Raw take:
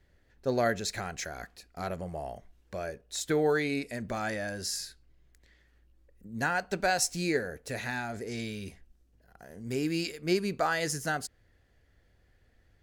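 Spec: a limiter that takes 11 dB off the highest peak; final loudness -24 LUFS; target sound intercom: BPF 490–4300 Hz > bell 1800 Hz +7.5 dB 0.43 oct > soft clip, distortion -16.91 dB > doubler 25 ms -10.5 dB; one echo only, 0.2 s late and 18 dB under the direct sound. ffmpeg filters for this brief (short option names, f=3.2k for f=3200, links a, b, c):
-filter_complex "[0:a]alimiter=level_in=2dB:limit=-24dB:level=0:latency=1,volume=-2dB,highpass=490,lowpass=4.3k,equalizer=f=1.8k:t=o:w=0.43:g=7.5,aecho=1:1:200:0.126,asoftclip=threshold=-27.5dB,asplit=2[a][b];[b]adelay=25,volume=-10.5dB[c];[a][c]amix=inputs=2:normalize=0,volume=14.5dB"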